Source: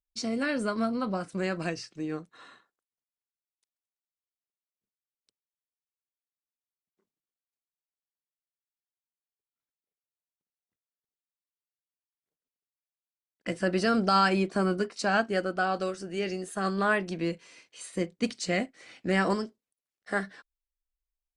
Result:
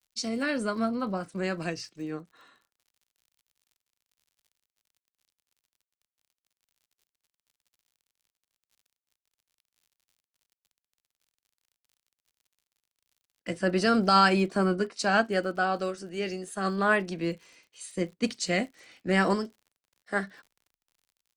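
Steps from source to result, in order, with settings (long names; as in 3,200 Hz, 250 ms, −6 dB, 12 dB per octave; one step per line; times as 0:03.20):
surface crackle 56 per second −44 dBFS
multiband upward and downward expander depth 40%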